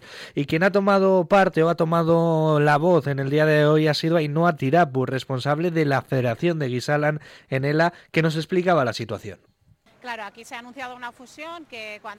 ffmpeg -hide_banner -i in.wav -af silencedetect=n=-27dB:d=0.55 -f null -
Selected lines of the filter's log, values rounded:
silence_start: 9.33
silence_end: 10.07 | silence_duration: 0.75